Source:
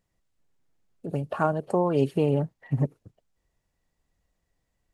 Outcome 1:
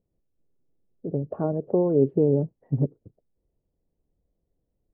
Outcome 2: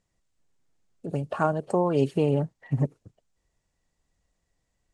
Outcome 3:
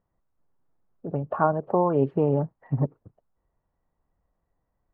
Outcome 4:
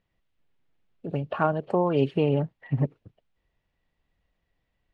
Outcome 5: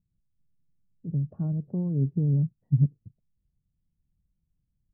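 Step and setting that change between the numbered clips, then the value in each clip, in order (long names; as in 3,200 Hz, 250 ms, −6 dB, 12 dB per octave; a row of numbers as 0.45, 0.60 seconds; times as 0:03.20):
low-pass with resonance, frequency: 440, 7,900, 1,100, 3,100, 160 Hertz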